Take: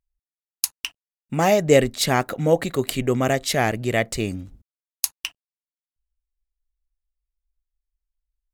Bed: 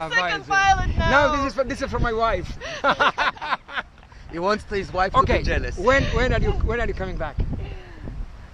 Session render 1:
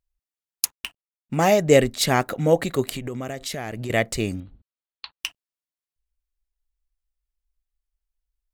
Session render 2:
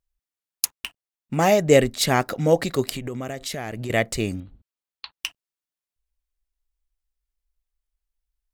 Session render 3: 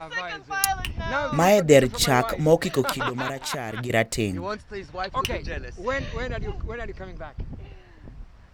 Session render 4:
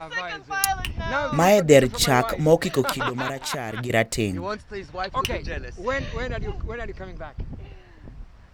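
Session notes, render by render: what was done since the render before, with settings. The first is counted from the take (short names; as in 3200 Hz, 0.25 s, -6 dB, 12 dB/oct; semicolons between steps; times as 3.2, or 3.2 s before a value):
0.65–1.36 median filter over 9 samples; 2.88–3.9 compressor 16:1, threshold -26 dBFS; 4.4–5.2 rippled Chebyshev low-pass 4400 Hz, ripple 3 dB
2.22–2.91 bell 5100 Hz +11 dB 0.35 oct
add bed -9.5 dB
gain +1 dB; limiter -1 dBFS, peak gain reduction 1 dB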